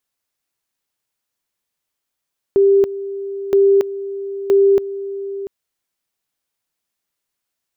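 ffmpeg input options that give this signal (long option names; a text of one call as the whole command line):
ffmpeg -f lavfi -i "aevalsrc='pow(10,(-8.5-14.5*gte(mod(t,0.97),0.28))/20)*sin(2*PI*395*t)':duration=2.91:sample_rate=44100" out.wav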